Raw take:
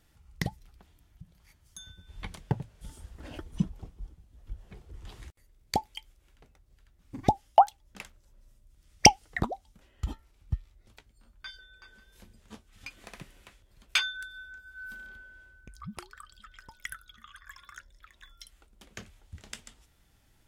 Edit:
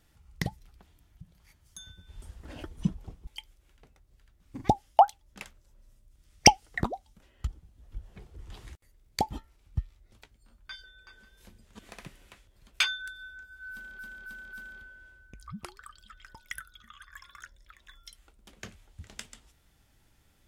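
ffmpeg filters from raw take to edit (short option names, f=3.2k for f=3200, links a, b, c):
-filter_complex "[0:a]asplit=9[a][b][c][d][e][f][g][h][i];[a]atrim=end=2.222[j];[b]atrim=start=2.968:end=4.022[k];[c]atrim=start=5.858:end=10.062[l];[d]atrim=start=4.018:end=5.862[m];[e]atrim=start=10.058:end=12.542[n];[f]atrim=start=12.938:end=15.142[o];[g]atrim=start=14.868:end=15.142[p];[h]atrim=start=14.868:end=15.142[q];[i]atrim=start=14.868[r];[j][k]acrossfade=d=0.004:c1=hsin:c2=hsin[s];[s][l]acrossfade=d=0.004:c1=hsin:c2=hsin[t];[t][m]acrossfade=d=0.004:c1=hsin:c2=hsin[u];[u][n]acrossfade=d=0.004:c1=hsin:c2=hsin[v];[v][o]acrossfade=d=0.004:c1=hsin:c2=hsin[w];[w][p]acrossfade=d=0.004:c1=hsin:c2=hsin[x];[x][q]acrossfade=d=0.004:c1=hsin:c2=hsin[y];[y][r]acrossfade=d=0.004:c1=hsin:c2=hsin"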